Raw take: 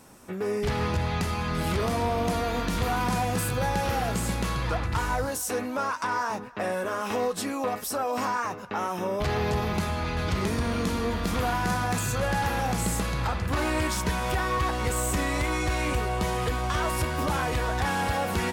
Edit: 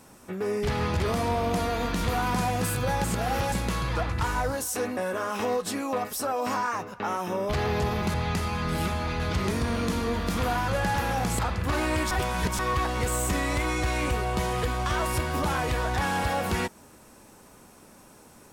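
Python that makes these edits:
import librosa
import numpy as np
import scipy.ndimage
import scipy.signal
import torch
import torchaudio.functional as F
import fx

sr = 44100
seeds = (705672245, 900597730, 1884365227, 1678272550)

y = fx.edit(x, sr, fx.move(start_s=1.0, length_s=0.74, to_s=9.85),
    fx.reverse_span(start_s=3.78, length_s=0.48),
    fx.cut(start_s=5.71, length_s=0.97),
    fx.cut(start_s=11.65, length_s=0.51),
    fx.cut(start_s=12.87, length_s=0.36),
    fx.reverse_span(start_s=13.95, length_s=0.48), tone=tone)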